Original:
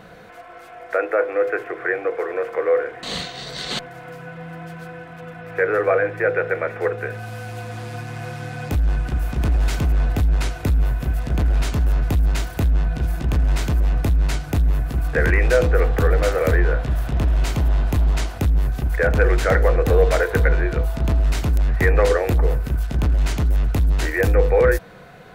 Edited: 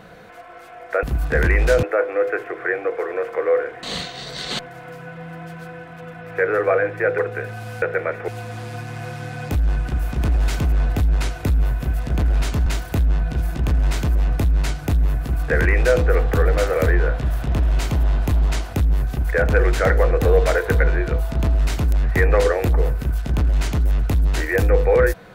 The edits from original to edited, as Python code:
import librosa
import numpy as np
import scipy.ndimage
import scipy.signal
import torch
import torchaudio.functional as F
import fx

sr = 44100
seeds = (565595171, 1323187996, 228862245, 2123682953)

y = fx.edit(x, sr, fx.move(start_s=6.38, length_s=0.46, to_s=7.48),
    fx.cut(start_s=11.86, length_s=0.45),
    fx.duplicate(start_s=14.86, length_s=0.8, to_s=1.03), tone=tone)